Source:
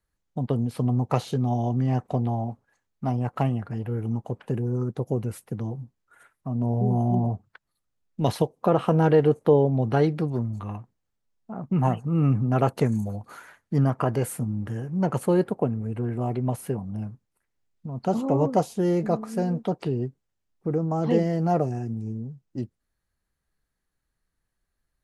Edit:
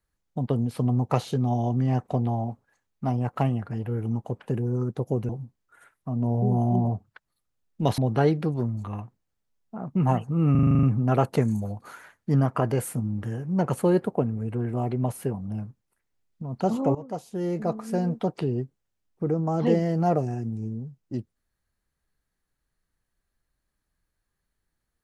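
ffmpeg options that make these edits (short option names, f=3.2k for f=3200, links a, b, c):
-filter_complex "[0:a]asplit=12[a][b][c][d][e][f][g][h][i][j][k][l];[a]atrim=end=5.292[m];[b]atrim=start=5.678:end=8.372[n];[c]atrim=start=9.738:end=12.312[o];[d]atrim=start=12.268:end=12.312[p];[e]atrim=start=12.268:end=12.312[q];[f]atrim=start=12.268:end=12.312[r];[g]atrim=start=12.268:end=12.312[s];[h]atrim=start=12.268:end=12.312[t];[i]atrim=start=12.268:end=12.312[u];[j]atrim=start=12.268:end=12.312[v];[k]atrim=start=12.268:end=18.39,asetpts=PTS-STARTPTS,afade=t=out:st=6.118:d=0.004:c=hsin:silence=0.112202[w];[l]atrim=start=18.39,asetpts=PTS-STARTPTS,afade=t=in:d=1.04:silence=0.112202[x];[m][n]acrossfade=d=0.004:c1=hsin:c2=hsin[y];[y][o]acrossfade=d=0.004:c1=hsin:c2=hsin[z];[z][p]acrossfade=d=0.004:c1=hsin:c2=hsin[aa];[aa][q]acrossfade=d=0.004:c1=hsin:c2=hsin[ab];[ab][r]acrossfade=d=0.004:c1=hsin:c2=hsin[ac];[ac][s]acrossfade=d=0.004:c1=hsin:c2=hsin[ad];[ad][t]acrossfade=d=0.004:c1=hsin:c2=hsin[ae];[ae][u]acrossfade=d=0.004:c1=hsin:c2=hsin[af];[af][v]acrossfade=d=0.004:c1=hsin:c2=hsin[ag];[w][x]concat=n=2:v=0:a=1[ah];[ag][ah]acrossfade=d=0.004:c1=hsin:c2=hsin"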